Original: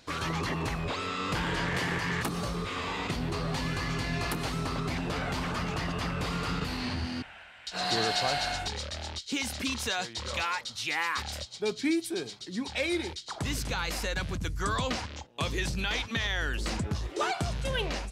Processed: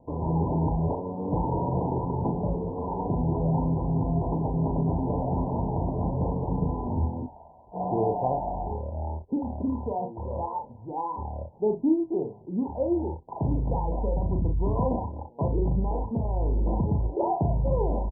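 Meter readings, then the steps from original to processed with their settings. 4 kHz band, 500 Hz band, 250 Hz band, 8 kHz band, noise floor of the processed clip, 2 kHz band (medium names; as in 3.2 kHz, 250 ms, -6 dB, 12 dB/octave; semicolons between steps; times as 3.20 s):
under -40 dB, +6.5 dB, +6.5 dB, under -40 dB, -49 dBFS, under -40 dB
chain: Chebyshev low-pass 1 kHz, order 10; early reflections 38 ms -5 dB, 62 ms -14 dB; trim +6 dB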